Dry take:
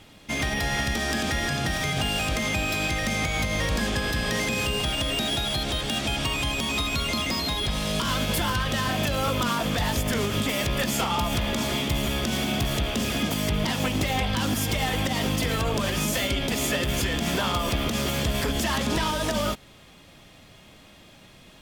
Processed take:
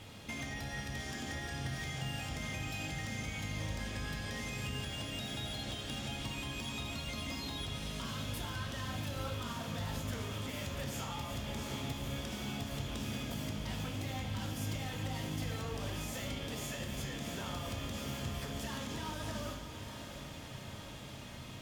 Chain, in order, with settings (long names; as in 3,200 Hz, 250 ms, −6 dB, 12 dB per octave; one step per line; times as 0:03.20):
downward compressor 6 to 1, threshold −40 dBFS, peak gain reduction 17.5 dB
feedback delay with all-pass diffusion 704 ms, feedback 72%, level −9 dB
on a send at −3.5 dB: convolution reverb RT60 1.1 s, pre-delay 3 ms
on the sum: level −2.5 dB